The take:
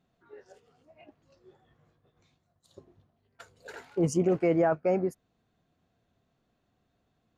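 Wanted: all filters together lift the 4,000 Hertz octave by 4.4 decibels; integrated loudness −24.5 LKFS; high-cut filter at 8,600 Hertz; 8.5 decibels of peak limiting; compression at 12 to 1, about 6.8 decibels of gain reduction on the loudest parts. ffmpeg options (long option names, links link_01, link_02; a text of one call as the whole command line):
ffmpeg -i in.wav -af "lowpass=8600,equalizer=frequency=4000:width_type=o:gain=7,acompressor=threshold=-27dB:ratio=12,volume=15dB,alimiter=limit=-13dB:level=0:latency=1" out.wav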